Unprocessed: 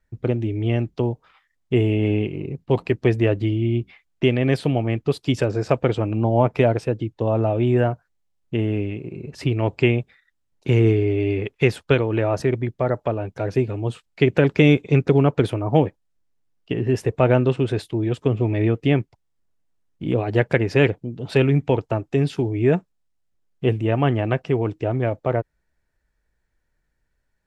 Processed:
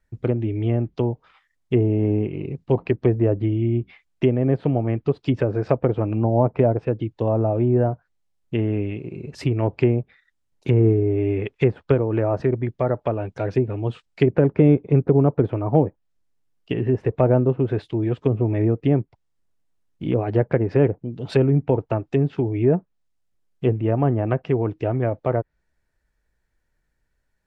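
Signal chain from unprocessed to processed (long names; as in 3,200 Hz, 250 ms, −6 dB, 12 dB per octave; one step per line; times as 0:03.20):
treble cut that deepens with the level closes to 880 Hz, closed at −15 dBFS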